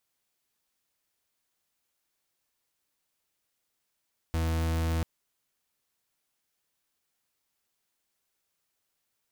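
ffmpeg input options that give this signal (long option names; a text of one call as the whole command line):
ffmpeg -f lavfi -i "aevalsrc='0.0398*(2*lt(mod(81.5*t,1),0.41)-1)':duration=0.69:sample_rate=44100" out.wav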